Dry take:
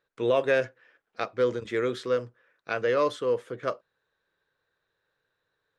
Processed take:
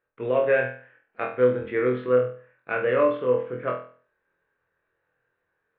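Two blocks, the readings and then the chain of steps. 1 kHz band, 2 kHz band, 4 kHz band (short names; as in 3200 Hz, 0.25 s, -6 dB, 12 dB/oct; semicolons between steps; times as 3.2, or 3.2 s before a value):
+2.0 dB, +3.5 dB, n/a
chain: on a send: flutter echo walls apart 4.1 m, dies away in 0.43 s; on the sum: AGC gain up to 3 dB; steep low-pass 2700 Hz 36 dB/oct; gain -2.5 dB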